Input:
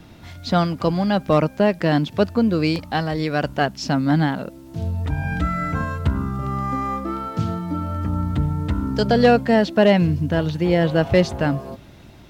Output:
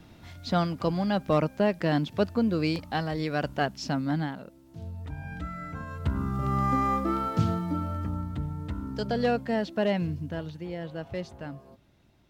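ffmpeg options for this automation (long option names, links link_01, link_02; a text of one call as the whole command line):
ffmpeg -i in.wav -af "volume=6dB,afade=type=out:start_time=3.77:duration=0.64:silence=0.446684,afade=type=in:start_time=5.85:duration=0.78:silence=0.223872,afade=type=out:start_time=7.28:duration=1.01:silence=0.298538,afade=type=out:start_time=10.09:duration=0.63:silence=0.446684" out.wav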